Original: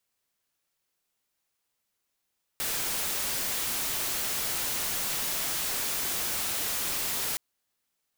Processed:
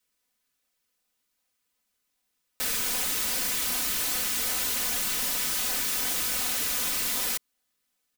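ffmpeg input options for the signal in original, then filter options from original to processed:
-f lavfi -i "anoisesrc=c=white:a=0.0517:d=4.77:r=44100:seed=1"
-filter_complex "[0:a]aecho=1:1:4:0.85,acrossover=split=770|1600[s0][s1][s2];[s0]acrusher=samples=27:mix=1:aa=0.000001:lfo=1:lforange=43.2:lforate=2.6[s3];[s3][s1][s2]amix=inputs=3:normalize=0"

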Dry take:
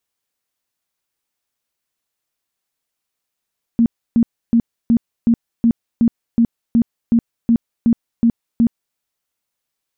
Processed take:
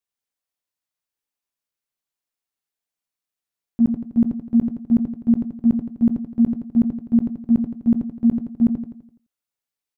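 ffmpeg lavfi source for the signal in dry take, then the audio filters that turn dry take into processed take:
-f lavfi -i "aevalsrc='0.355*sin(2*PI*232*mod(t,0.37))*lt(mod(t,0.37),16/232)':d=5.18:s=44100"
-filter_complex "[0:a]asplit=2[s0][s1];[s1]aecho=0:1:91:0.422[s2];[s0][s2]amix=inputs=2:normalize=0,agate=range=0.282:threshold=0.2:ratio=16:detection=peak,asplit=2[s3][s4];[s4]aecho=0:1:84|168|252|336|420|504:0.473|0.222|0.105|0.0491|0.0231|0.0109[s5];[s3][s5]amix=inputs=2:normalize=0"

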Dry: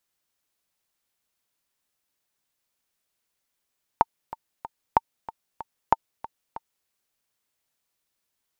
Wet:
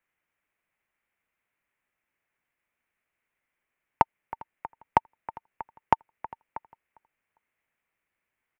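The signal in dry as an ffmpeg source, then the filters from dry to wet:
-f lavfi -i "aevalsrc='pow(10,(-3-18*gte(mod(t,3*60/188),60/188))/20)*sin(2*PI*903*mod(t,60/188))*exp(-6.91*mod(t,60/188)/0.03)':d=2.87:s=44100"
-filter_complex "[0:a]highshelf=f=3100:t=q:w=3:g=-12,acrossover=split=110|1000[s0][s1][s2];[s2]aeval=exprs='clip(val(0),-1,0.0708)':c=same[s3];[s0][s1][s3]amix=inputs=3:normalize=0,asplit=2[s4][s5];[s5]adelay=402,lowpass=f=3500:p=1,volume=0.0708,asplit=2[s6][s7];[s7]adelay=402,lowpass=f=3500:p=1,volume=0.25[s8];[s4][s6][s8]amix=inputs=3:normalize=0"

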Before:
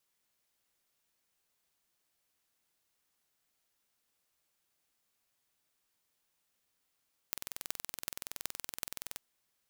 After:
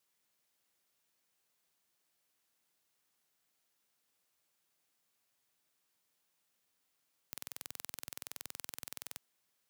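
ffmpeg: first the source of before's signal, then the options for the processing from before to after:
-f lavfi -i "aevalsrc='0.473*eq(mod(n,2070),0)*(0.5+0.5*eq(mod(n,16560),0))':d=1.85:s=44100"
-af "highpass=100,asoftclip=type=hard:threshold=0.178"

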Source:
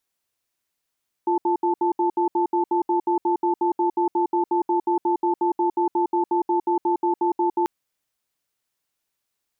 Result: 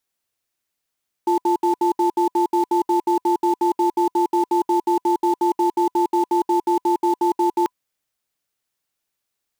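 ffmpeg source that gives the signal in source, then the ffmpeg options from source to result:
-f lavfi -i "aevalsrc='0.0944*(sin(2*PI*348*t)+sin(2*PI*879*t))*clip(min(mod(t,0.18),0.11-mod(t,0.18))/0.005,0,1)':d=6.39:s=44100"
-filter_complex "[0:a]bandreject=f=1000:w=30,asplit=2[s0][s1];[s1]acrusher=bits=4:mix=0:aa=0.000001,volume=0.398[s2];[s0][s2]amix=inputs=2:normalize=0"

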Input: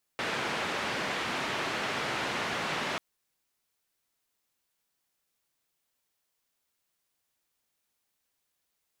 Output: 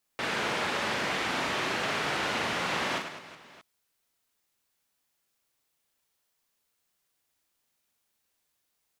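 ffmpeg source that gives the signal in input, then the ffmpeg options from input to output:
-f lavfi -i "anoisesrc=c=white:d=2.79:r=44100:seed=1,highpass=f=130,lowpass=f=2300,volume=-18.1dB"
-af "aecho=1:1:40|104|206.4|370.2|632.4:0.631|0.398|0.251|0.158|0.1"

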